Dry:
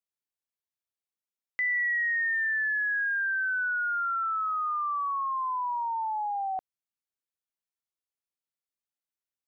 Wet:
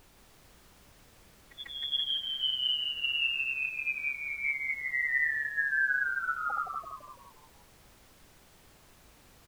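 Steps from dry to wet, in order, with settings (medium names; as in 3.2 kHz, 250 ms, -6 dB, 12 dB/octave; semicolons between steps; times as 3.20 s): peaking EQ 210 Hz -13.5 dB 0.47 oct; band-stop 360 Hz, Q 12; comb 6.3 ms, depth 91%; dynamic bell 2.4 kHz, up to -7 dB, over -45 dBFS, Q 3.8; ring modulator 40 Hz; small resonant body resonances 270/930 Hz, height 7 dB, ringing for 30 ms; tremolo 5.2 Hz, depth 81%; formant-preserving pitch shift +9.5 st; granulator, pitch spread up and down by 0 st; added noise pink -60 dBFS; on a send: frequency-shifting echo 168 ms, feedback 50%, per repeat -72 Hz, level -4 dB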